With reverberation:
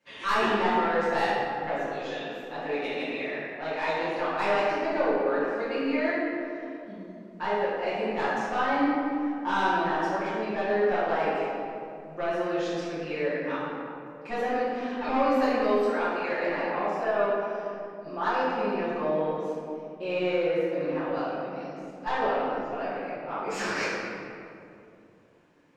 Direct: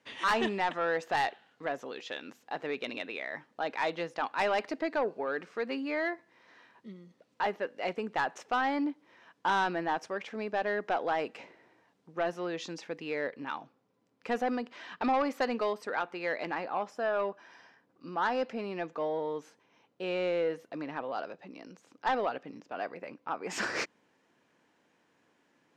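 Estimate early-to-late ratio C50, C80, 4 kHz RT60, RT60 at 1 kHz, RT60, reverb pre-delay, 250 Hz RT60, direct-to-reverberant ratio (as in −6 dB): −3.0 dB, −0.5 dB, 1.3 s, 2.3 s, 2.6 s, 5 ms, 3.5 s, −13.5 dB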